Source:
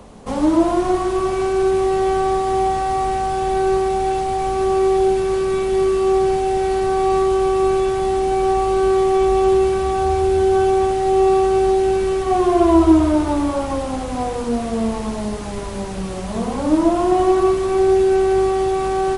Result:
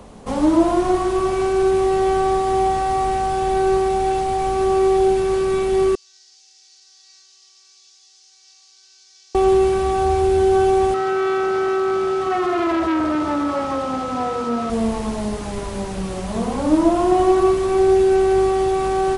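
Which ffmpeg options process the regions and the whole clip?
ffmpeg -i in.wav -filter_complex "[0:a]asettb=1/sr,asplit=3[link_01][link_02][link_03];[link_01]atrim=end=5.954[link_04];[link_02]atrim=start=5.95:end=9.35,asetpts=PTS-STARTPTS,afade=type=in:duration=0.004:curve=qsin,afade=type=out:start_time=3.396:duration=0.004:curve=qsin,aemphasis=mode=reproduction:type=cd,asoftclip=type=hard:threshold=-14dB,asuperpass=centerf=5600:order=4:qfactor=2.5[link_05];[link_03]atrim=start=9.346[link_06];[link_04][link_05]acrossfade=duration=0.004:curve1=hsin:curve2=qsin[link_07];[link_07][link_06]acrossfade=duration=0.004:curve1=qsin:curve2=hsin,asettb=1/sr,asplit=3[link_08][link_09][link_10];[link_08]atrim=end=10.944[link_11];[link_09]atrim=start=10.94:end=14.7,asetpts=PTS-STARTPTS,afade=type=in:duration=0.004:curve=qsin,afade=type=out:start_time=3.756:duration=0.004:curve=qsin,asoftclip=type=hard:threshold=-18dB,highpass=120,lowpass=6300,aeval=exprs='val(0)+0.0447*sin(2*PI*1300*n/s)':channel_layout=same[link_12];[link_10]atrim=start=14.696[link_13];[link_11][link_12]acrossfade=duration=0.004:curve1=hsin:curve2=qsin[link_14];[link_14][link_13]acrossfade=duration=0.004:curve1=qsin:curve2=hsin" out.wav

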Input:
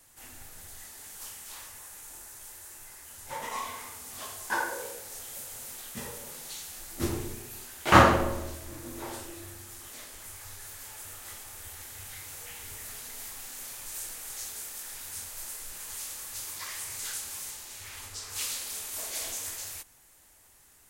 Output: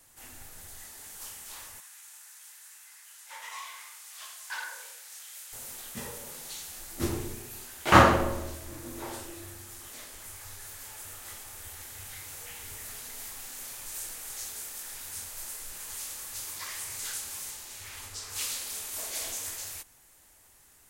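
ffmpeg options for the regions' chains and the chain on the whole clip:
ffmpeg -i in.wav -filter_complex "[0:a]asettb=1/sr,asplit=3[link_01][link_02][link_03];[link_01]atrim=end=1.804[link_04];[link_02]atrim=start=1.8:end=5.53,asetpts=PTS-STARTPTS,afade=type=in:duration=0.004:curve=qsin,afade=type=out:start_time=3.726:duration=0.004:curve=qsin,highshelf=frequency=8000:gain=-6.5,asoftclip=type=hard:threshold=-28.5dB,highpass=1500[link_05];[link_03]atrim=start=5.526[link_06];[link_04][link_05]acrossfade=duration=0.004:curve1=hsin:curve2=qsin[link_07];[link_07][link_06]acrossfade=duration=0.004:curve1=qsin:curve2=hsin" out.wav

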